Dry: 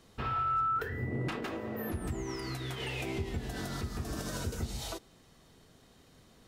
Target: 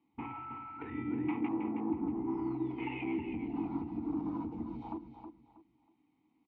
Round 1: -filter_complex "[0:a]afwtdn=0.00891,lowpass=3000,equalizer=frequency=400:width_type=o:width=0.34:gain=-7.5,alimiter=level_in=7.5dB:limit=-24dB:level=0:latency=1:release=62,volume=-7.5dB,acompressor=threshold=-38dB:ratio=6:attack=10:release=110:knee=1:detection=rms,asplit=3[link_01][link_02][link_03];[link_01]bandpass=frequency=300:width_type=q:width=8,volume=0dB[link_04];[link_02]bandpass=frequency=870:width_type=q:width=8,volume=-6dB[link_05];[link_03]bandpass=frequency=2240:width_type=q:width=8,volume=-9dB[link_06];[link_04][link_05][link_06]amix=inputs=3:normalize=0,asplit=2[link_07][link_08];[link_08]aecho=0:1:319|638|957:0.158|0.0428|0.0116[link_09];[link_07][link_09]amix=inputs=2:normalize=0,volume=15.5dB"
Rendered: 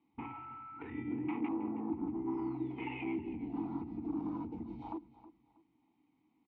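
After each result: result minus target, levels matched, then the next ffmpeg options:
echo-to-direct −8 dB; downward compressor: peak gain reduction +4.5 dB
-filter_complex "[0:a]afwtdn=0.00891,lowpass=3000,equalizer=frequency=400:width_type=o:width=0.34:gain=-7.5,alimiter=level_in=7.5dB:limit=-24dB:level=0:latency=1:release=62,volume=-7.5dB,acompressor=threshold=-38dB:ratio=6:attack=10:release=110:knee=1:detection=rms,asplit=3[link_01][link_02][link_03];[link_01]bandpass=frequency=300:width_type=q:width=8,volume=0dB[link_04];[link_02]bandpass=frequency=870:width_type=q:width=8,volume=-6dB[link_05];[link_03]bandpass=frequency=2240:width_type=q:width=8,volume=-9dB[link_06];[link_04][link_05][link_06]amix=inputs=3:normalize=0,asplit=2[link_07][link_08];[link_08]aecho=0:1:319|638|957:0.398|0.107|0.029[link_09];[link_07][link_09]amix=inputs=2:normalize=0,volume=15.5dB"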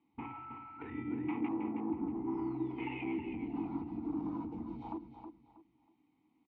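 downward compressor: peak gain reduction +4.5 dB
-filter_complex "[0:a]afwtdn=0.00891,lowpass=3000,equalizer=frequency=400:width_type=o:width=0.34:gain=-7.5,alimiter=level_in=7.5dB:limit=-24dB:level=0:latency=1:release=62,volume=-7.5dB,asplit=3[link_01][link_02][link_03];[link_01]bandpass=frequency=300:width_type=q:width=8,volume=0dB[link_04];[link_02]bandpass=frequency=870:width_type=q:width=8,volume=-6dB[link_05];[link_03]bandpass=frequency=2240:width_type=q:width=8,volume=-9dB[link_06];[link_04][link_05][link_06]amix=inputs=3:normalize=0,asplit=2[link_07][link_08];[link_08]aecho=0:1:319|638|957:0.398|0.107|0.029[link_09];[link_07][link_09]amix=inputs=2:normalize=0,volume=15.5dB"

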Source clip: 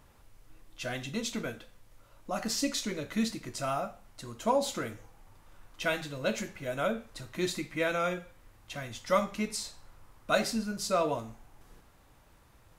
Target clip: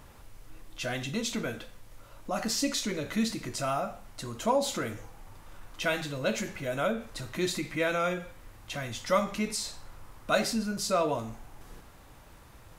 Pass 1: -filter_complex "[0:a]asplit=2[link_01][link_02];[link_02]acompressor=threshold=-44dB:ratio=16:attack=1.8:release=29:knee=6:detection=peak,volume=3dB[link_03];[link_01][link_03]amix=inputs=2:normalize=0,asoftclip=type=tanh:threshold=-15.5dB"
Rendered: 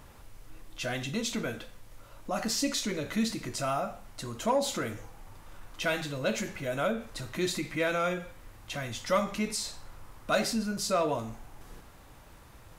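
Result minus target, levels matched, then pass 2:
soft clipping: distortion +21 dB
-filter_complex "[0:a]asplit=2[link_01][link_02];[link_02]acompressor=threshold=-44dB:ratio=16:attack=1.8:release=29:knee=6:detection=peak,volume=3dB[link_03];[link_01][link_03]amix=inputs=2:normalize=0,asoftclip=type=tanh:threshold=-4dB"

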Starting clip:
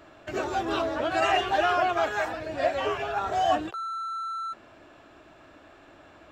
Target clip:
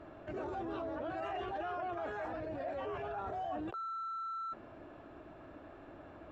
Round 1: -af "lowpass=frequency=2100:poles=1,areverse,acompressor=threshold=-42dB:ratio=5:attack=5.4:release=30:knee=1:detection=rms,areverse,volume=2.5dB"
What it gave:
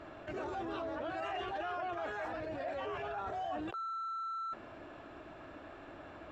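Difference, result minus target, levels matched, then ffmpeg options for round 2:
2,000 Hz band +3.0 dB
-af "lowpass=frequency=710:poles=1,areverse,acompressor=threshold=-42dB:ratio=5:attack=5.4:release=30:knee=1:detection=rms,areverse,volume=2.5dB"

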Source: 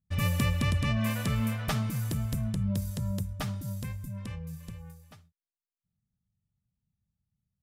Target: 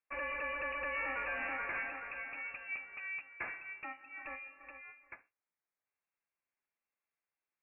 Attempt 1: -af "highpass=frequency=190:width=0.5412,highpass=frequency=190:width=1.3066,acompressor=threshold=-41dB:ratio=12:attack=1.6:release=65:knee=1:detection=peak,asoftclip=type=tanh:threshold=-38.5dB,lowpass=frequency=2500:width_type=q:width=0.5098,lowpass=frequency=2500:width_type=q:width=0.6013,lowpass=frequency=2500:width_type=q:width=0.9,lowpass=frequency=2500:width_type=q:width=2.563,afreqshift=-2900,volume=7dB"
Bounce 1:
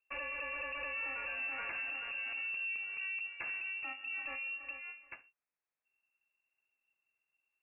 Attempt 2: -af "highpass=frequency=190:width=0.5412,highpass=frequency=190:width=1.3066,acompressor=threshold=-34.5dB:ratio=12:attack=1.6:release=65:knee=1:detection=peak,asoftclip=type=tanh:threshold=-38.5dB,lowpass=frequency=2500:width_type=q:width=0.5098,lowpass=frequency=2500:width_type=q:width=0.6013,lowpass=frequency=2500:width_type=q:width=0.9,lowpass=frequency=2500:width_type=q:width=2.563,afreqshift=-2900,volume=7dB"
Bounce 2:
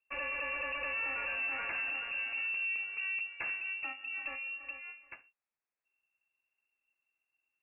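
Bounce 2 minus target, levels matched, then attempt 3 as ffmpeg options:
250 Hz band −7.0 dB
-af "highpass=frequency=430:width=0.5412,highpass=frequency=430:width=1.3066,acompressor=threshold=-34.5dB:ratio=12:attack=1.6:release=65:knee=1:detection=peak,asoftclip=type=tanh:threshold=-38.5dB,lowpass=frequency=2500:width_type=q:width=0.5098,lowpass=frequency=2500:width_type=q:width=0.6013,lowpass=frequency=2500:width_type=q:width=0.9,lowpass=frequency=2500:width_type=q:width=2.563,afreqshift=-2900,volume=7dB"

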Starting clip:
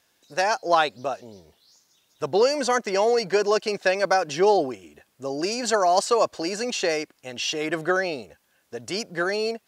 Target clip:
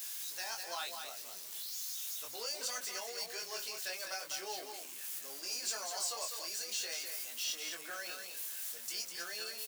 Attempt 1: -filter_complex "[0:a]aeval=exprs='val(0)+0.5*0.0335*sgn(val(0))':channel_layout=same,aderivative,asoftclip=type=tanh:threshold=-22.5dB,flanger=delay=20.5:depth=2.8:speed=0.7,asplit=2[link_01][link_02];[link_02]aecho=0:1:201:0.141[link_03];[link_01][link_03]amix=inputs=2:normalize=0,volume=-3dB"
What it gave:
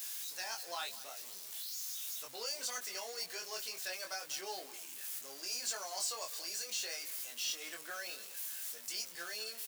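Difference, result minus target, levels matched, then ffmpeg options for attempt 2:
echo-to-direct −11 dB
-filter_complex "[0:a]aeval=exprs='val(0)+0.5*0.0335*sgn(val(0))':channel_layout=same,aderivative,asoftclip=type=tanh:threshold=-22.5dB,flanger=delay=20.5:depth=2.8:speed=0.7,asplit=2[link_01][link_02];[link_02]aecho=0:1:201:0.501[link_03];[link_01][link_03]amix=inputs=2:normalize=0,volume=-3dB"

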